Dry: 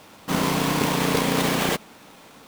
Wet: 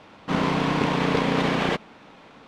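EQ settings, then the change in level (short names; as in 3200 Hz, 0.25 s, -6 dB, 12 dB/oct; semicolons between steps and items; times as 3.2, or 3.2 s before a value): LPF 3300 Hz 12 dB/oct; 0.0 dB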